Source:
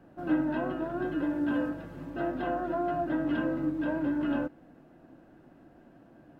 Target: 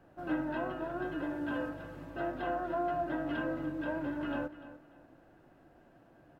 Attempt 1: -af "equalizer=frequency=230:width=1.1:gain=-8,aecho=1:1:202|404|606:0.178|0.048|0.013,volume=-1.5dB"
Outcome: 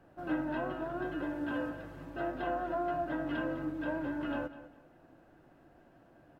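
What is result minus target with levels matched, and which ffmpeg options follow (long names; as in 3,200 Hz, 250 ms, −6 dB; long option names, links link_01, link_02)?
echo 93 ms early
-af "equalizer=frequency=230:width=1.1:gain=-8,aecho=1:1:295|590|885:0.178|0.048|0.013,volume=-1.5dB"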